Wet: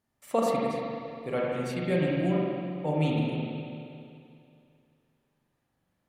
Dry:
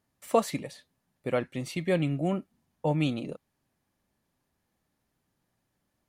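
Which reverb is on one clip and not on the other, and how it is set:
spring reverb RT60 2.5 s, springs 39/44 ms, chirp 35 ms, DRR −4.5 dB
level −4.5 dB

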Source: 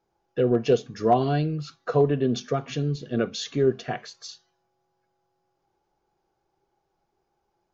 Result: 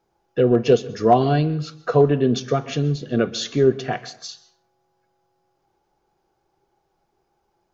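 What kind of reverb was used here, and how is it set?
dense smooth reverb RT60 0.57 s, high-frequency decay 0.65×, pre-delay 115 ms, DRR 18.5 dB
level +5 dB

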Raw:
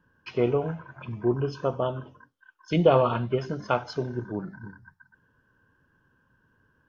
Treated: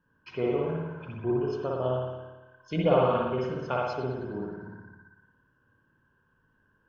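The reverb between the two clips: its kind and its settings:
spring reverb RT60 1.1 s, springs 55 ms, chirp 50 ms, DRR −3 dB
level −7 dB

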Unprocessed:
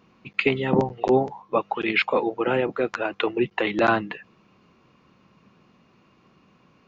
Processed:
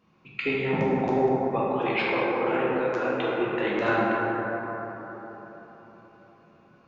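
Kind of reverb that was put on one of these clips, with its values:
dense smooth reverb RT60 4.3 s, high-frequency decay 0.3×, DRR −7 dB
level −9.5 dB

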